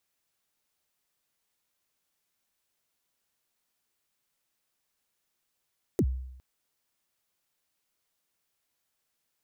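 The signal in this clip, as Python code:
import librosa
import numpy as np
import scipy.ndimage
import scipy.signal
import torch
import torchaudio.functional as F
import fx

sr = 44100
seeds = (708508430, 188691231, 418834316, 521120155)

y = fx.drum_kick(sr, seeds[0], length_s=0.41, level_db=-19, start_hz=450.0, end_hz=64.0, sweep_ms=60.0, decay_s=0.82, click=True)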